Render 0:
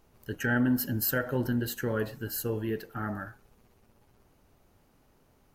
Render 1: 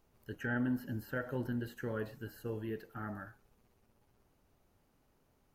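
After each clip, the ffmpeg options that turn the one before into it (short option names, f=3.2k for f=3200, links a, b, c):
-filter_complex "[0:a]acrossover=split=2700[a][b];[b]acompressor=threshold=-50dB:ratio=4:attack=1:release=60[c];[a][c]amix=inputs=2:normalize=0,volume=-8dB"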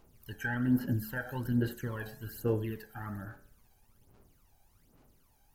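-af "highshelf=f=5.3k:g=9.5,aphaser=in_gain=1:out_gain=1:delay=1.3:decay=0.7:speed=1.2:type=sinusoidal,bandreject=f=72.23:t=h:w=4,bandreject=f=144.46:t=h:w=4,bandreject=f=216.69:t=h:w=4,bandreject=f=288.92:t=h:w=4,bandreject=f=361.15:t=h:w=4,bandreject=f=433.38:t=h:w=4,bandreject=f=505.61:t=h:w=4,bandreject=f=577.84:t=h:w=4,bandreject=f=650.07:t=h:w=4,bandreject=f=722.3:t=h:w=4,bandreject=f=794.53:t=h:w=4,bandreject=f=866.76:t=h:w=4,bandreject=f=938.99:t=h:w=4,bandreject=f=1.01122k:t=h:w=4,bandreject=f=1.08345k:t=h:w=4,bandreject=f=1.15568k:t=h:w=4,bandreject=f=1.22791k:t=h:w=4,bandreject=f=1.30014k:t=h:w=4,bandreject=f=1.37237k:t=h:w=4,bandreject=f=1.4446k:t=h:w=4,bandreject=f=1.51683k:t=h:w=4,bandreject=f=1.58906k:t=h:w=4,bandreject=f=1.66129k:t=h:w=4,bandreject=f=1.73352k:t=h:w=4,bandreject=f=1.80575k:t=h:w=4,bandreject=f=1.87798k:t=h:w=4,bandreject=f=1.95021k:t=h:w=4,bandreject=f=2.02244k:t=h:w=4,bandreject=f=2.09467k:t=h:w=4,bandreject=f=2.1669k:t=h:w=4"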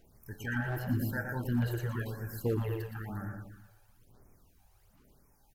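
-filter_complex "[0:a]asoftclip=type=hard:threshold=-25dB,asplit=2[a][b];[b]adelay=117,lowpass=f=4.2k:p=1,volume=-4dB,asplit=2[c][d];[d]adelay=117,lowpass=f=4.2k:p=1,volume=0.5,asplit=2[e][f];[f]adelay=117,lowpass=f=4.2k:p=1,volume=0.5,asplit=2[g][h];[h]adelay=117,lowpass=f=4.2k:p=1,volume=0.5,asplit=2[i][j];[j]adelay=117,lowpass=f=4.2k:p=1,volume=0.5,asplit=2[k][l];[l]adelay=117,lowpass=f=4.2k:p=1,volume=0.5[m];[a][c][e][g][i][k][m]amix=inputs=7:normalize=0,afftfilt=real='re*(1-between(b*sr/1024,210*pow(3700/210,0.5+0.5*sin(2*PI*0.99*pts/sr))/1.41,210*pow(3700/210,0.5+0.5*sin(2*PI*0.99*pts/sr))*1.41))':imag='im*(1-between(b*sr/1024,210*pow(3700/210,0.5+0.5*sin(2*PI*0.99*pts/sr))/1.41,210*pow(3700/210,0.5+0.5*sin(2*PI*0.99*pts/sr))*1.41))':win_size=1024:overlap=0.75"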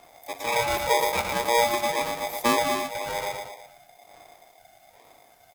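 -af "aeval=exprs='val(0)*sgn(sin(2*PI*710*n/s))':c=same,volume=8.5dB"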